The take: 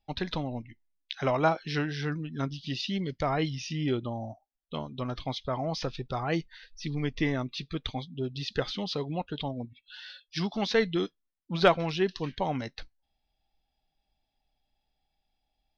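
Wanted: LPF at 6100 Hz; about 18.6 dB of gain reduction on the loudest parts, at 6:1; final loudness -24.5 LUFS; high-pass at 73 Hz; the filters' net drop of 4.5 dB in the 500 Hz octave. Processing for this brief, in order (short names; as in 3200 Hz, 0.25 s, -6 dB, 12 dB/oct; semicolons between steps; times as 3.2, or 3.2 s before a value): HPF 73 Hz; LPF 6100 Hz; bell 500 Hz -6 dB; compressor 6:1, threshold -39 dBFS; gain +18.5 dB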